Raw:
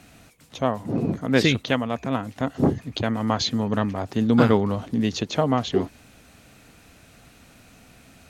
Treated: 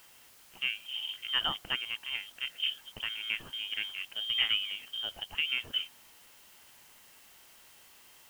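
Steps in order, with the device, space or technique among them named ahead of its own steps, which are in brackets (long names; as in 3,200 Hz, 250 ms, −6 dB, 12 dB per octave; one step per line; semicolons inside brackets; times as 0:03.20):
scrambled radio voice (band-pass filter 300–2,900 Hz; voice inversion scrambler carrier 3,400 Hz; white noise bed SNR 21 dB)
level −9 dB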